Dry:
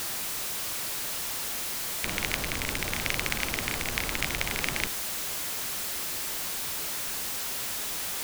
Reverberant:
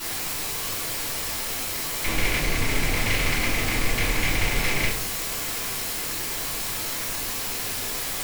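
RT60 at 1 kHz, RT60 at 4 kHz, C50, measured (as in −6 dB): 0.40 s, 0.35 s, 5.5 dB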